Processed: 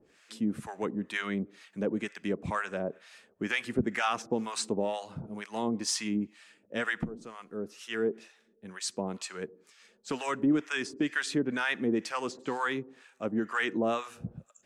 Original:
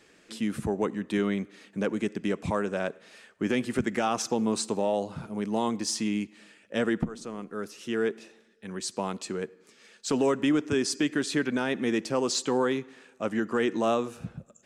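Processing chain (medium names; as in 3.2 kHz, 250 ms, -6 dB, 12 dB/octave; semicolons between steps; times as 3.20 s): dynamic bell 1.9 kHz, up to +6 dB, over -45 dBFS, Q 0.88; harmonic tremolo 2.1 Hz, depth 100%, crossover 750 Hz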